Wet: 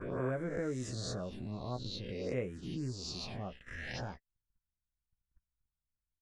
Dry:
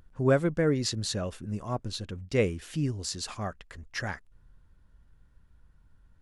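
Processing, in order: spectral swells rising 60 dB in 1.00 s; envelope phaser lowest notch 520 Hz, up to 4600 Hz, full sweep at -22 dBFS; air absorption 60 m; doubler 16 ms -8 dB; compressor 2:1, threshold -44 dBFS, peak gain reduction 15 dB; gate -46 dBFS, range -36 dB

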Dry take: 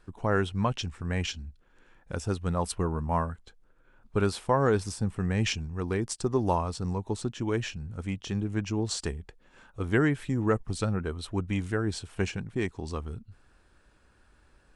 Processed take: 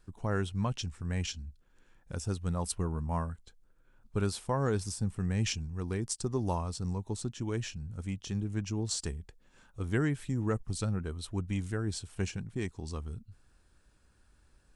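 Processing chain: tone controls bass +6 dB, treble +9 dB; gain -8 dB

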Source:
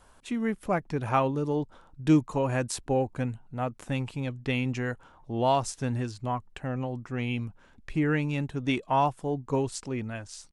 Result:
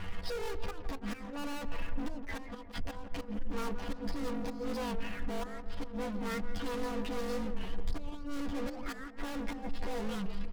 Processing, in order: delay-line pitch shifter +11.5 st; in parallel at -6 dB: soft clip -27.5 dBFS, distortion -8 dB; on the sum: downsampling 11025 Hz; high shelf 2100 Hz -8 dB; flipped gate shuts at -18 dBFS, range -39 dB; hard clip -32 dBFS, distortion -7 dB; sample leveller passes 5; compressor, threshold -38 dBFS, peak gain reduction 5 dB; low shelf 67 Hz +10.5 dB; comb 4.2 ms, depth 52%; on a send: darkening echo 0.171 s, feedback 57%, low-pass 1200 Hz, level -8 dB; on the sum: record warp 45 rpm, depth 100 cents; gain -2.5 dB

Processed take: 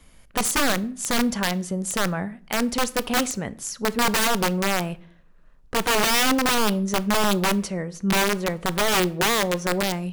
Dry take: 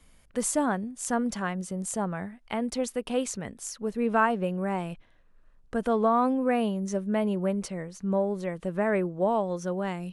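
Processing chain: bell 8600 Hz -4 dB 0.2 oct; wrapped overs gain 21.5 dB; on a send: reverb RT60 0.55 s, pre-delay 14 ms, DRR 17 dB; on the sum: gain +6.5 dB

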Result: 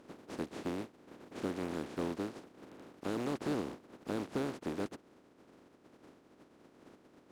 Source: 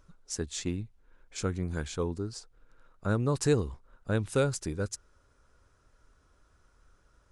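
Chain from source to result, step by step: spectral contrast lowered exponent 0.13; compressor 1.5:1, threshold -47 dBFS, peak gain reduction 10 dB; soft clip -32.5 dBFS, distortion -9 dB; band-pass 290 Hz, Q 1.7; gain +18 dB

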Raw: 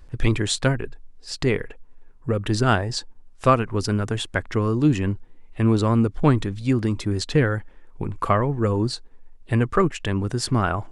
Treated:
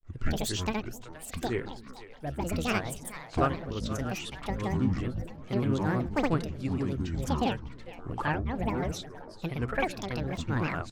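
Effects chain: split-band echo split 410 Hz, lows 0.16 s, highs 0.461 s, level -13.5 dB; grains 0.176 s, grains 20/s, pitch spread up and down by 12 st; gain -5.5 dB

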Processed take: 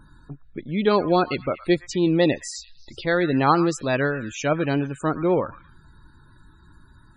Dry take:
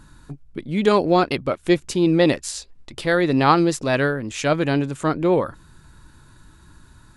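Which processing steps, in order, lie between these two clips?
dynamic EQ 5400 Hz, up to +3 dB, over -39 dBFS, Q 1.1; delay with a stepping band-pass 0.114 s, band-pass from 1400 Hz, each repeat 0.7 oct, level -12 dB; loudest bins only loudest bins 64; gain -2.5 dB

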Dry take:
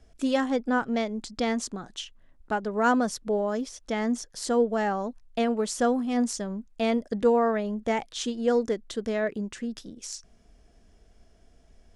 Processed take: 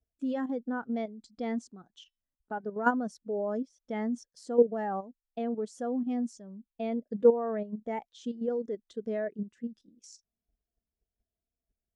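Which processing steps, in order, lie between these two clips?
HPF 69 Hz 6 dB/oct; 1.95–2.78 de-hum 380.5 Hz, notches 14; level quantiser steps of 10 dB; spectral expander 1.5:1; gain +2 dB

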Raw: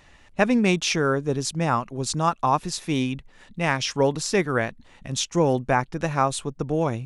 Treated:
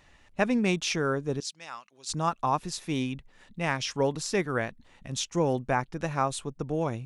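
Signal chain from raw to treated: 1.4–2.09 band-pass 4400 Hz, Q 1; gain -5.5 dB

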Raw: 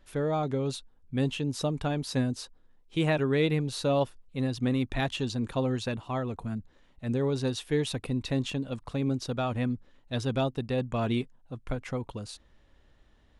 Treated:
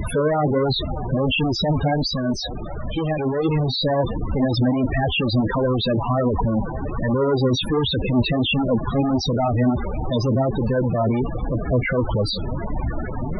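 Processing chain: tracing distortion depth 0.05 ms; HPF 63 Hz 12 dB/oct; bell 140 Hz -3.5 dB 1.9 oct; limiter -26 dBFS, peak gain reduction 11 dB; added noise pink -52 dBFS; fuzz box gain 59 dB, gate -58 dBFS; flange 1.4 Hz, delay 0.4 ms, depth 8.3 ms, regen +60%; 2.08–3.45 resonator 580 Hz, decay 0.21 s, harmonics all, mix 30%; delay with a stepping band-pass 0.577 s, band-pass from 960 Hz, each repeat 0.7 oct, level -11 dB; loudest bins only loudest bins 16

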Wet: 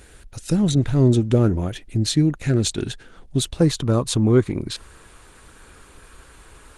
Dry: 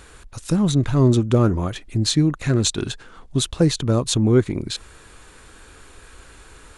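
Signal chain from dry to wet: bell 1100 Hz -10.5 dB 0.43 oct, from 3.6 s +2.5 dB; Opus 24 kbps 48000 Hz

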